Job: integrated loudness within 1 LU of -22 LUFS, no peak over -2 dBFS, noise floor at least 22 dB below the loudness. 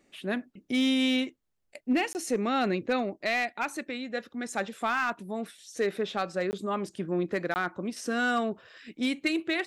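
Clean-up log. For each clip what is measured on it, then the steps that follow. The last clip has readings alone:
clipped 0.4%; flat tops at -19.5 dBFS; dropouts 3; longest dropout 19 ms; loudness -30.0 LUFS; peak -19.5 dBFS; loudness target -22.0 LUFS
-> clip repair -19.5 dBFS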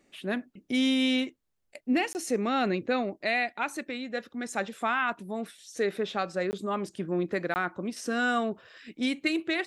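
clipped 0.0%; dropouts 3; longest dropout 19 ms
-> interpolate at 2.13/6.51/7.54, 19 ms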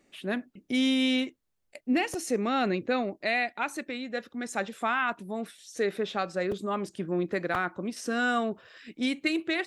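dropouts 0; loudness -30.0 LUFS; peak -14.5 dBFS; loudness target -22.0 LUFS
-> gain +8 dB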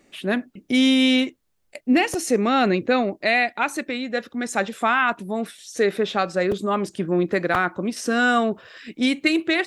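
loudness -22.0 LUFS; peak -6.5 dBFS; noise floor -66 dBFS

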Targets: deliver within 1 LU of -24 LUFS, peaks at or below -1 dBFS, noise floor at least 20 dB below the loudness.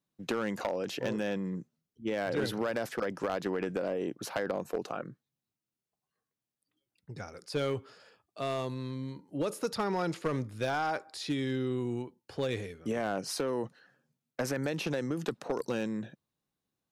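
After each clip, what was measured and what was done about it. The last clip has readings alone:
clipped 0.7%; flat tops at -24.0 dBFS; loudness -34.5 LUFS; peak -24.0 dBFS; loudness target -24.0 LUFS
-> clip repair -24 dBFS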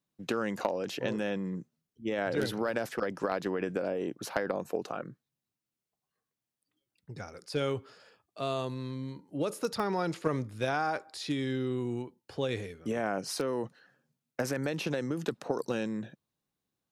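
clipped 0.0%; loudness -34.0 LUFS; peak -15.0 dBFS; loudness target -24.0 LUFS
-> gain +10 dB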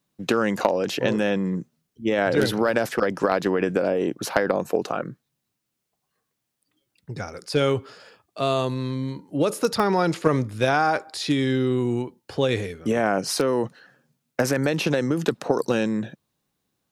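loudness -24.0 LUFS; peak -5.0 dBFS; noise floor -79 dBFS

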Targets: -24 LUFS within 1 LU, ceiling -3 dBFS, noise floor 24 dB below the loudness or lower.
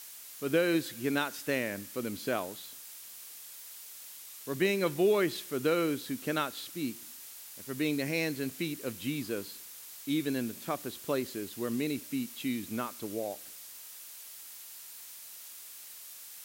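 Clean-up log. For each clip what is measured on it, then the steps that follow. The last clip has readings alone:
noise floor -48 dBFS; noise floor target -58 dBFS; loudness -33.5 LUFS; peak -15.0 dBFS; loudness target -24.0 LUFS
-> denoiser 10 dB, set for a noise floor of -48 dBFS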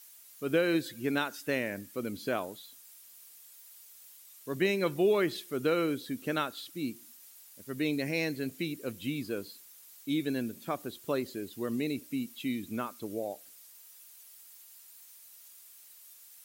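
noise floor -55 dBFS; noise floor target -57 dBFS
-> denoiser 6 dB, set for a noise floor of -55 dBFS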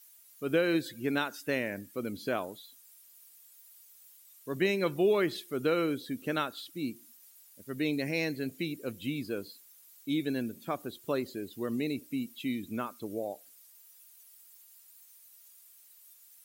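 noise floor -58 dBFS; loudness -33.0 LUFS; peak -15.0 dBFS; loudness target -24.0 LUFS
-> gain +9 dB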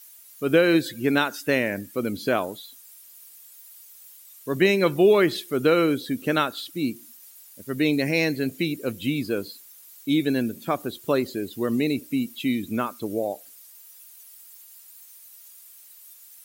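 loudness -24.0 LUFS; peak -6.0 dBFS; noise floor -49 dBFS

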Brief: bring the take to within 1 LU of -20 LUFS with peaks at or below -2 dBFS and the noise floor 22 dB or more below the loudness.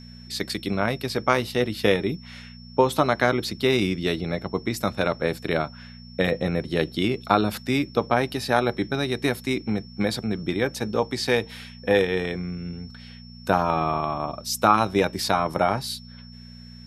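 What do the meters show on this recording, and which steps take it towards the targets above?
hum 60 Hz; harmonics up to 240 Hz; hum level -42 dBFS; steady tone 5400 Hz; tone level -48 dBFS; loudness -24.5 LUFS; peak -2.0 dBFS; loudness target -20.0 LUFS
-> de-hum 60 Hz, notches 4; notch 5400 Hz, Q 30; gain +4.5 dB; limiter -2 dBFS

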